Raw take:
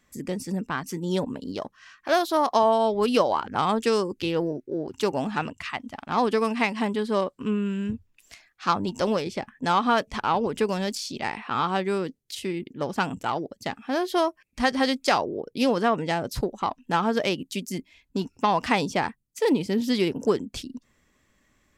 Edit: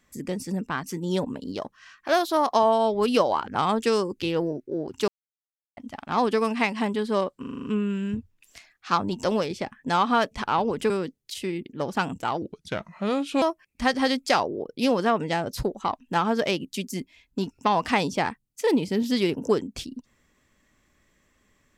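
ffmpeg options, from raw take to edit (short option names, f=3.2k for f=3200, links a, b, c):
-filter_complex "[0:a]asplit=12[a][b][c][d][e][f][g][h][i][j][k][l];[a]atrim=end=5.08,asetpts=PTS-STARTPTS,afade=t=out:st=5.076:d=0.004:c=hsin[m];[b]atrim=start=5.08:end=5.77,asetpts=PTS-STARTPTS,volume=0[n];[c]atrim=start=5.77:end=7.442,asetpts=PTS-STARTPTS,afade=t=in:d=0.004:c=hsin[o];[d]atrim=start=7.398:end=7.442[p];[e]atrim=start=7.398:end=7.442[q];[f]atrim=start=7.398:end=7.442[r];[g]atrim=start=7.398:end=7.442[s];[h]atrim=start=7.398:end=7.442[t];[i]atrim=start=7.398:end=10.662[u];[j]atrim=start=11.908:end=13.434[v];[k]atrim=start=13.43:end=14.2,asetpts=PTS-STARTPTS,asetrate=33957,aresample=44100[w];[l]atrim=start=14.196[x];[m][n][o]concat=n=3:v=0:a=1[y];[y][p]acrossfade=d=0.004:c1=hsin:c2=hsin[z];[z][q]acrossfade=d=0.004:c1=hsin:c2=hsin[aa];[aa][r]acrossfade=d=0.004:c1=hsin:c2=hsin[ab];[ab][s]acrossfade=d=0.004:c1=hsin:c2=hsin[ac];[ac][t]acrossfade=d=0.004:c1=hsin:c2=hsin[ad];[ad][u]acrossfade=d=0.004:c1=hsin:c2=hsin[ae];[ae][v]acrossfade=d=0.004:c1=hsin:c2=hsin[af];[af][w]acrossfade=d=0.004:c1=hsin:c2=hsin[ag];[ag][x]acrossfade=d=0.004:c1=hsin:c2=hsin"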